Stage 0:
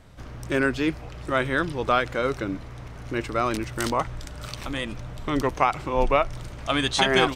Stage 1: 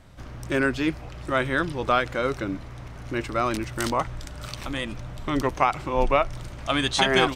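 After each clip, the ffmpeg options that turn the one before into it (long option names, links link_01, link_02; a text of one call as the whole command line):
ffmpeg -i in.wav -af "bandreject=frequency=450:width=12" out.wav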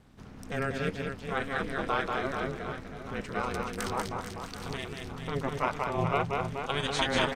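ffmpeg -i in.wav -af "aecho=1:1:190|437|758.1|1176|1718:0.631|0.398|0.251|0.158|0.1,aeval=exprs='val(0)*sin(2*PI*140*n/s)':channel_layout=same,volume=-5.5dB" out.wav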